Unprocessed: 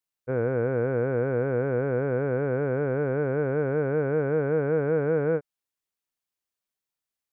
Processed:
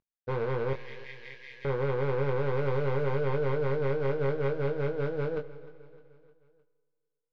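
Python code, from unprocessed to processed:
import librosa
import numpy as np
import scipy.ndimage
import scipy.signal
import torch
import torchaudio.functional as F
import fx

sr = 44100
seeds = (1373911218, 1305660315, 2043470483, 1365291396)

y = fx.cvsd(x, sr, bps=32000)
y = fx.over_compress(y, sr, threshold_db=-27.0, ratio=-0.5)
y = 10.0 ** (-24.5 / 20.0) * (np.abs((y / 10.0 ** (-24.5 / 20.0) + 3.0) % 4.0 - 2.0) - 1.0)
y = fx.brickwall_highpass(y, sr, low_hz=1600.0, at=(0.73, 1.65))
y = fx.quant_dither(y, sr, seeds[0], bits=8, dither='none', at=(2.53, 3.19))
y = fx.air_absorb(y, sr, metres=310.0)
y = fx.doubler(y, sr, ms=22.0, db=-6)
y = fx.echo_feedback(y, sr, ms=306, feedback_pct=51, wet_db=-18.5)
y = fx.rev_schroeder(y, sr, rt60_s=2.2, comb_ms=31, drr_db=18.5)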